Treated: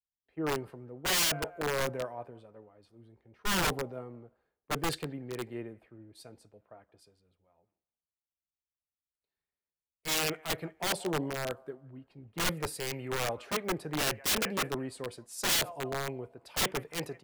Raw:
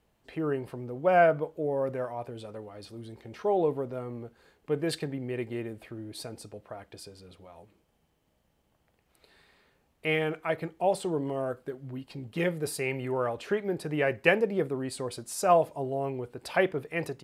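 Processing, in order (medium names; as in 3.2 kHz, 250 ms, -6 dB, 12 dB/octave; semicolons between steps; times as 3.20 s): feedback echo behind a band-pass 178 ms, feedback 47%, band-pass 1.2 kHz, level -18 dB; integer overflow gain 23 dB; three bands expanded up and down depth 100%; trim -3 dB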